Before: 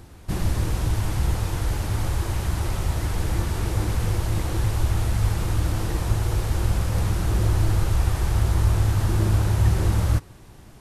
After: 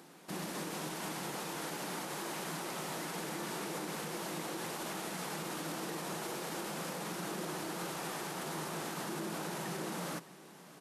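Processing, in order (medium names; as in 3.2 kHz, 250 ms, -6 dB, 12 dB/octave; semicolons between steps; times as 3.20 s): elliptic high-pass 160 Hz, stop band 40 dB; bass shelf 280 Hz -6.5 dB; peak limiter -27.5 dBFS, peak gain reduction 6.5 dB; delay 616 ms -19 dB; trim -3 dB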